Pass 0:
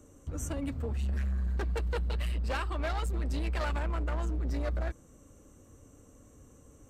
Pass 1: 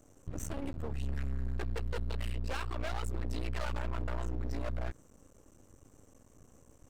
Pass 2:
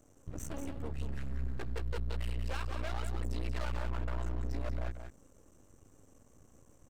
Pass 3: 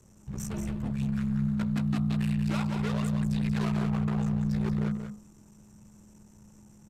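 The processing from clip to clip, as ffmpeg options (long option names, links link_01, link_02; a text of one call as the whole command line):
ffmpeg -i in.wav -af "aeval=exprs='max(val(0),0)':channel_layout=same" out.wav
ffmpeg -i in.wav -af "aecho=1:1:184:0.422,volume=-2.5dB" out.wav
ffmpeg -i in.wav -af "aresample=32000,aresample=44100,bandreject=frequency=47.51:width_type=h:width=4,bandreject=frequency=95.02:width_type=h:width=4,bandreject=frequency=142.53:width_type=h:width=4,bandreject=frequency=190.04:width_type=h:width=4,bandreject=frequency=237.55:width_type=h:width=4,bandreject=frequency=285.06:width_type=h:width=4,bandreject=frequency=332.57:width_type=h:width=4,bandreject=frequency=380.08:width_type=h:width=4,bandreject=frequency=427.59:width_type=h:width=4,bandreject=frequency=475.1:width_type=h:width=4,bandreject=frequency=522.61:width_type=h:width=4,bandreject=frequency=570.12:width_type=h:width=4,bandreject=frequency=617.63:width_type=h:width=4,bandreject=frequency=665.14:width_type=h:width=4,bandreject=frequency=712.65:width_type=h:width=4,bandreject=frequency=760.16:width_type=h:width=4,bandreject=frequency=807.67:width_type=h:width=4,bandreject=frequency=855.18:width_type=h:width=4,bandreject=frequency=902.69:width_type=h:width=4,bandreject=frequency=950.2:width_type=h:width=4,bandreject=frequency=997.71:width_type=h:width=4,bandreject=frequency=1045.22:width_type=h:width=4,bandreject=frequency=1092.73:width_type=h:width=4,bandreject=frequency=1140.24:width_type=h:width=4,bandreject=frequency=1187.75:width_type=h:width=4,bandreject=frequency=1235.26:width_type=h:width=4,bandreject=frequency=1282.77:width_type=h:width=4,bandreject=frequency=1330.28:width_type=h:width=4,bandreject=frequency=1377.79:width_type=h:width=4,bandreject=frequency=1425.3:width_type=h:width=4,bandreject=frequency=1472.81:width_type=h:width=4,bandreject=frequency=1520.32:width_type=h:width=4,bandreject=frequency=1567.83:width_type=h:width=4,afreqshift=-210,volume=6dB" out.wav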